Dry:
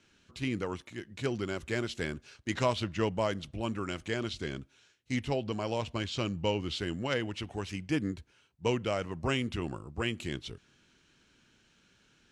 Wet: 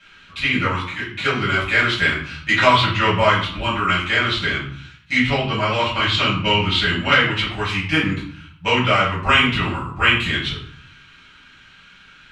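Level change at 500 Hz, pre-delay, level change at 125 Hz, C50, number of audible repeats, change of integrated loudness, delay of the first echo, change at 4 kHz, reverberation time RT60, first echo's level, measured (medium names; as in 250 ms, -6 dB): +9.5 dB, 3 ms, +12.5 dB, 5.0 dB, no echo, +16.0 dB, no echo, +19.5 dB, 0.60 s, no echo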